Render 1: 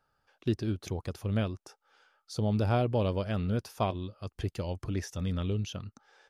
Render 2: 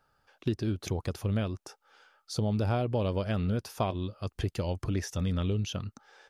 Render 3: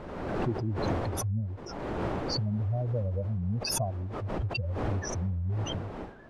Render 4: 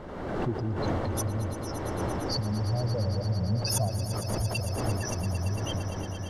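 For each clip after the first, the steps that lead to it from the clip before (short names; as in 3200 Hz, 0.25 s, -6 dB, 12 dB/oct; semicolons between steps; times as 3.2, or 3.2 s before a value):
compressor 3:1, threshold -31 dBFS, peak gain reduction 7 dB; gain +4.5 dB
spectral contrast raised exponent 3.3; wind noise 580 Hz -39 dBFS; backwards sustainer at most 34 dB/s; gain -1 dB
high shelf 9300 Hz +3.5 dB; notch 2500 Hz, Q 11; on a send: swelling echo 0.114 s, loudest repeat 5, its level -13 dB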